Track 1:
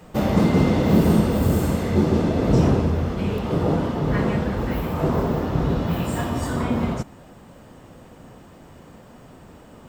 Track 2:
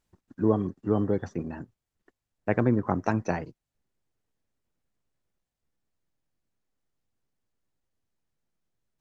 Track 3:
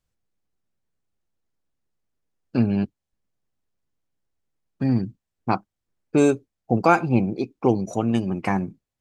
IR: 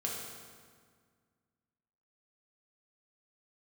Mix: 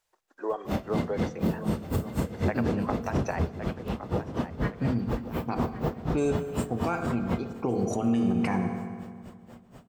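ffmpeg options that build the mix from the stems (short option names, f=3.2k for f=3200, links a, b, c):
-filter_complex "[0:a]aeval=exprs='val(0)*pow(10,-34*(0.5-0.5*cos(2*PI*4.1*n/s))/20)':c=same,adelay=500,volume=-2dB,asplit=3[a][b][c];[b]volume=-19dB[d];[c]volume=-16.5dB[e];[1:a]highpass=f=510:w=0.5412,highpass=f=510:w=1.3066,volume=3dB,asplit=3[f][g][h];[g]volume=-23.5dB[i];[h]volume=-15.5dB[j];[2:a]dynaudnorm=f=110:g=11:m=11.5dB,volume=-5dB,afade=t=in:st=7.41:d=0.46:silence=0.316228,asplit=2[k][l];[l]volume=-7.5dB[m];[f][k]amix=inputs=2:normalize=0,acompressor=threshold=-26dB:ratio=6,volume=0dB[n];[3:a]atrim=start_sample=2205[o];[d][i][m]amix=inputs=3:normalize=0[p];[p][o]afir=irnorm=-1:irlink=0[q];[e][j]amix=inputs=2:normalize=0,aecho=0:1:1112|2224|3336|4448:1|0.31|0.0961|0.0298[r];[a][n][q][r]amix=inputs=4:normalize=0,alimiter=limit=-17dB:level=0:latency=1:release=91"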